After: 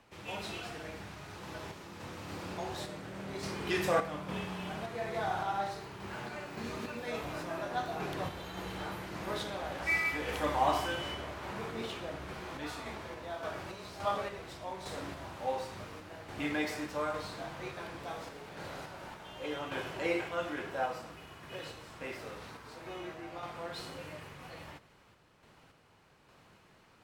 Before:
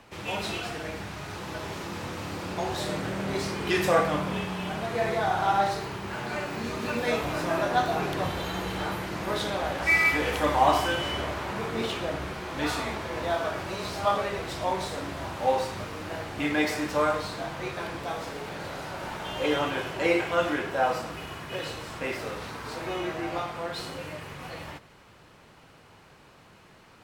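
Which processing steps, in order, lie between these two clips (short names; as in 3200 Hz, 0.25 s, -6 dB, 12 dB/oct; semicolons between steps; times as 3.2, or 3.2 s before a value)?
random-step tremolo; gain -6.5 dB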